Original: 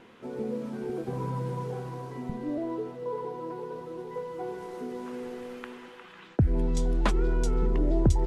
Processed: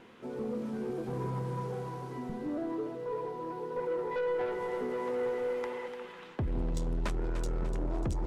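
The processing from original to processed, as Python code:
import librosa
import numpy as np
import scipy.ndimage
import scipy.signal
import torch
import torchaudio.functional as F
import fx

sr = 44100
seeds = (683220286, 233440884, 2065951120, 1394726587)

y = fx.small_body(x, sr, hz=(530.0, 890.0, 2000.0), ring_ms=25, db=14, at=(3.76, 5.88))
y = 10.0 ** (-27.0 / 20.0) * np.tanh(y / 10.0 ** (-27.0 / 20.0))
y = fx.echo_split(y, sr, split_hz=410.0, low_ms=163, high_ms=296, feedback_pct=52, wet_db=-10.0)
y = y * 10.0 ** (-1.5 / 20.0)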